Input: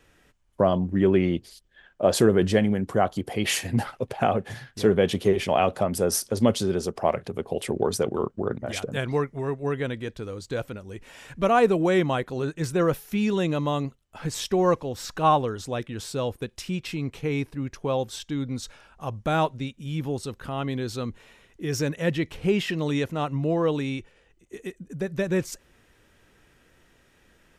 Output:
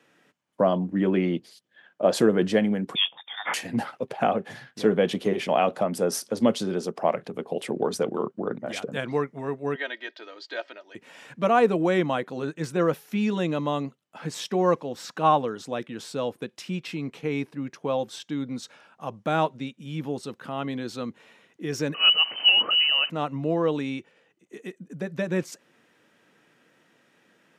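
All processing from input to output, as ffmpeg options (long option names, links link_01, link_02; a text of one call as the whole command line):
ffmpeg -i in.wav -filter_complex "[0:a]asettb=1/sr,asplit=3[link_01][link_02][link_03];[link_01]atrim=end=2.954[link_04];[link_02]atrim=start=2.95:end=3.54,asetpts=PTS-STARTPTS,afade=type=in:duration=0.004:curve=qsin,afade=type=out:start_time=0.586:duration=0.004:curve=qsin,highpass=frequency=510:width=0.5412,highpass=frequency=510:width=1.3066,lowpass=frequency=3400:width_type=q:width=0.5098,lowpass=frequency=3400:width_type=q:width=0.6013,lowpass=frequency=3400:width_type=q:width=0.9,lowpass=frequency=3400:width_type=q:width=2.563,afreqshift=-4000[link_05];[link_03]atrim=start=3.536[link_06];[link_04][link_05]acrossfade=duration=0.004:curve1=hsin:curve2=qsin[link_07];[link_07][link_06]acrossfade=duration=0.004:curve1=qsin:curve2=hsin,asettb=1/sr,asplit=3[link_08][link_09][link_10];[link_08]atrim=end=9.754[link_11];[link_09]atrim=start=9.75:end=10.95,asetpts=PTS-STARTPTS,afade=type=in:duration=0.004:curve=qsin,afade=type=out:start_time=1.196:duration=0.004:curve=qsin,highpass=frequency=440:width=0.5412,highpass=frequency=440:width=1.3066,equalizer=frequency=520:width_type=q:width=4:gain=-6,equalizer=frequency=750:width_type=q:width=4:gain=3,equalizer=frequency=1100:width_type=q:width=4:gain=-5,equalizer=frequency=1800:width_type=q:width=4:gain=6,equalizer=frequency=3200:width_type=q:width=4:gain=4,equalizer=frequency=4600:width_type=q:width=4:gain=6,lowpass=frequency=5300:width=0.5412,lowpass=frequency=5300:width=1.3066,aecho=1:1:3.2:0.63,atrim=end_sample=52920[link_12];[link_10]atrim=start=10.946[link_13];[link_11][link_12]acrossfade=duration=0.004:curve1=hsin:curve2=qsin[link_14];[link_14][link_13]acrossfade=duration=0.004:curve1=qsin:curve2=hsin,asettb=1/sr,asplit=3[link_15][link_16][link_17];[link_15]atrim=end=21.944[link_18];[link_16]atrim=start=21.94:end=23.1,asetpts=PTS-STARTPTS,afade=type=in:duration=0.004:curve=qsin,afade=type=out:start_time=1.156:duration=0.004:curve=qsin,aeval=exprs='val(0)+0.5*0.0211*sgn(val(0))':channel_layout=same,equalizer=frequency=170:width=2.9:gain=10.5,lowpass=frequency=2600:width_type=q:width=0.5098,lowpass=frequency=2600:width_type=q:width=0.6013,lowpass=frequency=2600:width_type=q:width=0.9,lowpass=frequency=2600:width_type=q:width=2.563,afreqshift=-3100[link_19];[link_17]atrim=start=23.096[link_20];[link_18][link_19]acrossfade=duration=0.004:curve1=hsin:curve2=qsin[link_21];[link_21][link_20]acrossfade=duration=0.004:curve1=qsin:curve2=hsin,highpass=frequency=160:width=0.5412,highpass=frequency=160:width=1.3066,highshelf=frequency=6600:gain=-8.5,bandreject=frequency=390:width=12" out.wav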